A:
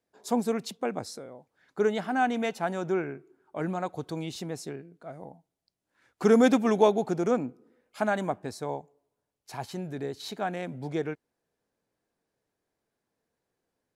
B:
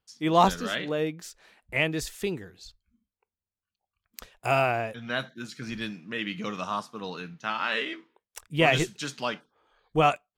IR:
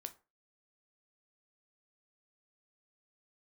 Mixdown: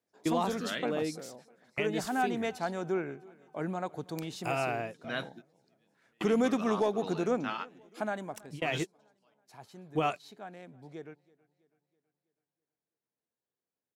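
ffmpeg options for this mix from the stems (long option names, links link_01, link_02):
-filter_complex "[0:a]highpass=91,asoftclip=type=tanh:threshold=-9dB,volume=-3.5dB,afade=type=out:start_time=7.78:duration=0.66:silence=0.298538,asplit=3[link_01][link_02][link_03];[link_02]volume=-23.5dB[link_04];[1:a]highpass=84,equalizer=frequency=320:width_type=o:width=0.77:gain=3.5,volume=-6dB[link_05];[link_03]apad=whole_len=457357[link_06];[link_05][link_06]sidechaingate=range=-37dB:threshold=-53dB:ratio=16:detection=peak[link_07];[link_04]aecho=0:1:326|652|978|1304|1630|1956|2282:1|0.48|0.23|0.111|0.0531|0.0255|0.0122[link_08];[link_01][link_07][link_08]amix=inputs=3:normalize=0,alimiter=limit=-19dB:level=0:latency=1:release=208"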